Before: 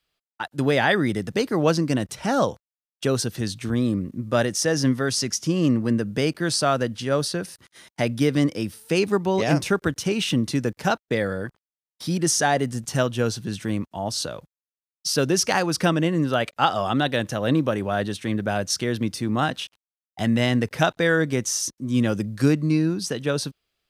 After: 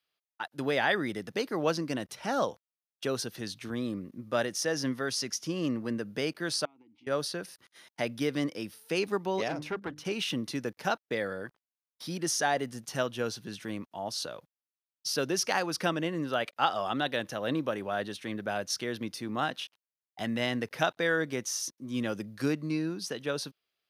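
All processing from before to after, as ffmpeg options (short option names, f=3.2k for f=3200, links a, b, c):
-filter_complex "[0:a]asettb=1/sr,asplit=3[a][b][c];[a]atrim=end=6.654[d];[b]atrim=start=6.65:end=7.07,asetpts=PTS-STARTPTS,afade=t=in:d=0.004:c=qsin,afade=t=out:st=0.416:d=0.004:c=qsin,acompressor=threshold=-32dB:ratio=16:attack=3.2:release=140:knee=1:detection=peak,asplit=3[e][f][g];[e]bandpass=f=300:t=q:w=8,volume=0dB[h];[f]bandpass=f=870:t=q:w=8,volume=-6dB[i];[g]bandpass=f=2.24k:t=q:w=8,volume=-9dB[j];[h][i][j]amix=inputs=3:normalize=0,lowshelf=f=150:g=7[k];[c]atrim=start=7.066[l];[d][k]acrossfade=d=0.004:c1=hsin:c2=qsin[m];[m][l]acrossfade=d=0.004:c1=qsin:c2=hsin,asettb=1/sr,asplit=3[n][o][p];[n]atrim=end=9.484[q];[o]atrim=start=9.48:end=10.05,asetpts=PTS-STARTPTS,afade=t=in:d=0.004:c=qsin,afade=t=out:st=0.566:d=0.004:c=qsin,highshelf=f=4k:g=-11.5,bandreject=f=50:t=h:w=6,bandreject=f=100:t=h:w=6,bandreject=f=150:t=h:w=6,bandreject=f=200:t=h:w=6,bandreject=f=250:t=h:w=6,bandreject=f=300:t=h:w=6,aeval=exprs='(tanh(7.94*val(0)+0.4)-tanh(0.4))/7.94':c=same[r];[p]atrim=start=10.046[s];[q][r]acrossfade=d=0.004:c1=hsin:c2=qsin[t];[t][s]acrossfade=d=0.004:c1=qsin:c2=hsin,highpass=f=360:p=1,equalizer=f=7.8k:t=o:w=0.4:g=-8,volume=-6dB"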